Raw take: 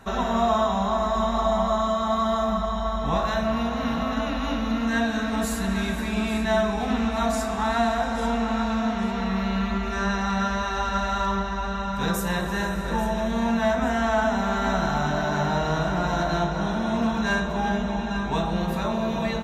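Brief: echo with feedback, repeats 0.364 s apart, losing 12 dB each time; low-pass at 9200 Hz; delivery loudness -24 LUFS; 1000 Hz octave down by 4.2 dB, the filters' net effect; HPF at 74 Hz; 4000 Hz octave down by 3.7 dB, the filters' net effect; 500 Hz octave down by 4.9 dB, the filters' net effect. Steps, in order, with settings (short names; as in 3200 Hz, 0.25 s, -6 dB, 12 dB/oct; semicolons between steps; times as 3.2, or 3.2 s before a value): HPF 74 Hz; LPF 9200 Hz; bell 500 Hz -5.5 dB; bell 1000 Hz -3.5 dB; bell 4000 Hz -4 dB; feedback echo 0.364 s, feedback 25%, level -12 dB; gain +3.5 dB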